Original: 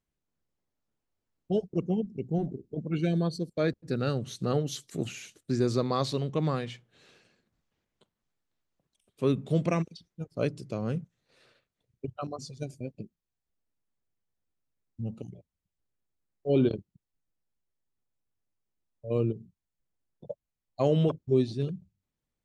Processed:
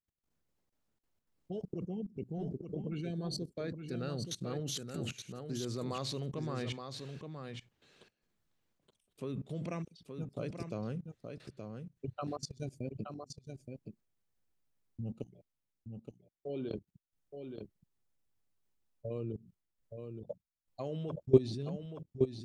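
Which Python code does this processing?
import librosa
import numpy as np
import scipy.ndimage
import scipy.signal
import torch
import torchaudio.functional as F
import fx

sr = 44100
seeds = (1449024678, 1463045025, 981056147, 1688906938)

p1 = fx.low_shelf(x, sr, hz=110.0, db=-12.0, at=(15.26, 16.75))
p2 = fx.level_steps(p1, sr, step_db=21)
p3 = p2 + fx.echo_single(p2, sr, ms=872, db=-6.5, dry=0)
y = p3 * librosa.db_to_amplitude(4.0)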